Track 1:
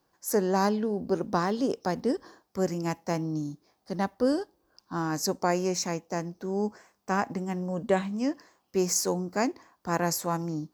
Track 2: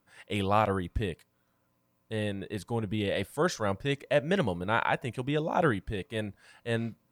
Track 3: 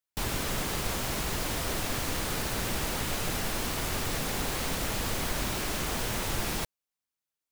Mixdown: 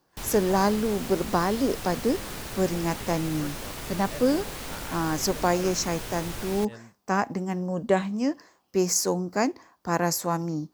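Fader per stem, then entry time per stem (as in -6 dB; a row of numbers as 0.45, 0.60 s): +2.5, -15.5, -5.0 dB; 0.00, 0.00, 0.00 s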